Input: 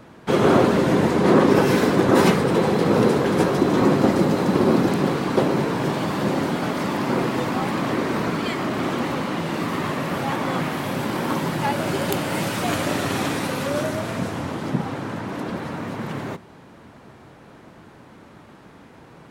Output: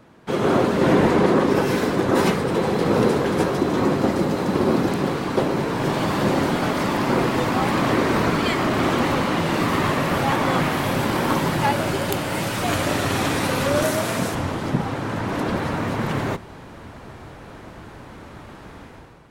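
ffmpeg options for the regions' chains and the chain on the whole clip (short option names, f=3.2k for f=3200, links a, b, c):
-filter_complex "[0:a]asettb=1/sr,asplit=3[a][b][c];[a]atrim=end=0.814[d];[b]atrim=start=0.81:end=1.26,asetpts=PTS-STARTPTS,afade=t=in:d=0.004:c=qsin,afade=t=out:st=0.446:d=0.004:c=qsin,bass=f=250:g=-2,treble=f=4k:g=-5,acontrast=51[e];[c]atrim=start=1.256[f];[d][e]acrossfade=d=0.004:c1=hsin:c2=qsin[g];[g][f]acrossfade=d=0.004:c1=qsin:c2=hsin,asettb=1/sr,asplit=3[h][i][j];[h]atrim=end=13.824[k];[i]atrim=start=13.82:end=14.35,asetpts=PTS-STARTPTS,afade=t=in:d=0.004:c=qsin,afade=t=out:st=0.526:d=0.004:c=qsin,highpass=140,highshelf=f=6.2k:g=9.5[l];[j]atrim=start=14.346[m];[k][l]acrossfade=d=0.004:c1=hsin:c2=qsin[n];[n][m]acrossfade=d=0.004:c1=qsin:c2=hsin,dynaudnorm=f=120:g=7:m=11.5dB,asubboost=boost=3.5:cutoff=83,volume=-5dB"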